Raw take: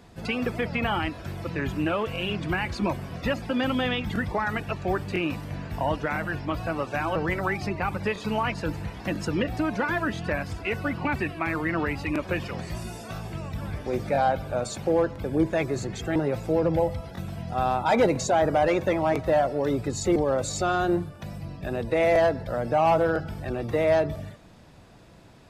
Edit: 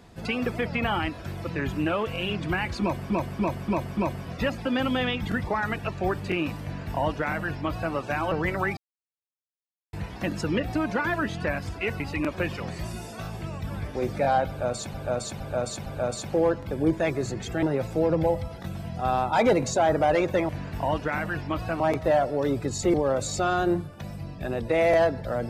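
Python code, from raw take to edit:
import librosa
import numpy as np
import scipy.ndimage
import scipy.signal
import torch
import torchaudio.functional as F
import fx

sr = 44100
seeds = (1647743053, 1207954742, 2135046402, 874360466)

y = fx.edit(x, sr, fx.repeat(start_s=2.81, length_s=0.29, count=5),
    fx.duplicate(start_s=5.47, length_s=1.31, to_s=19.02),
    fx.silence(start_s=7.61, length_s=1.16),
    fx.cut(start_s=10.84, length_s=1.07),
    fx.repeat(start_s=14.39, length_s=0.46, count=4), tone=tone)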